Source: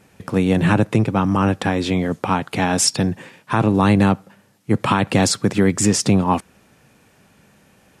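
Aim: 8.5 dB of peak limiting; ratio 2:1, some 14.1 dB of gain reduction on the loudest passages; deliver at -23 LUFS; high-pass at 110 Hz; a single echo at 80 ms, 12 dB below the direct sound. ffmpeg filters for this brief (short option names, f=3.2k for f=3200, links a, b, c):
-af "highpass=110,acompressor=threshold=-39dB:ratio=2,alimiter=level_in=0.5dB:limit=-24dB:level=0:latency=1,volume=-0.5dB,aecho=1:1:80:0.251,volume=11.5dB"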